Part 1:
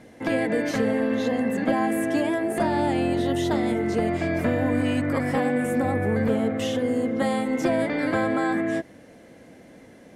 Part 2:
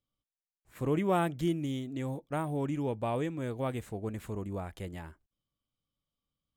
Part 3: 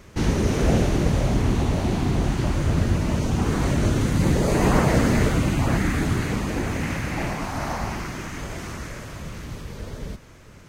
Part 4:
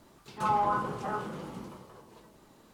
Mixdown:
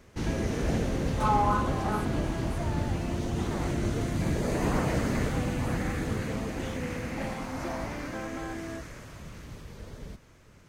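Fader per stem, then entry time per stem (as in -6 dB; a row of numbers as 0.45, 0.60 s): -14.0, -15.5, -9.0, +1.5 dB; 0.00, 2.45, 0.00, 0.80 s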